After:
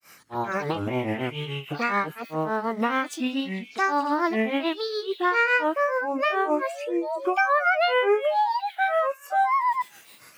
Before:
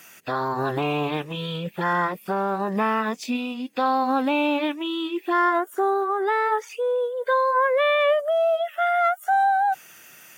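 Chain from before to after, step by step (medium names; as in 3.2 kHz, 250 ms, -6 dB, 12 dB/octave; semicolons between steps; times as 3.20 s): painted sound rise, 6.12–7.67 s, 400–1000 Hz -33 dBFS; repeats whose band climbs or falls 269 ms, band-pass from 3.4 kHz, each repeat 0.7 oct, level -8.5 dB; granulator 239 ms, grains 7 per s, pitch spread up and down by 7 st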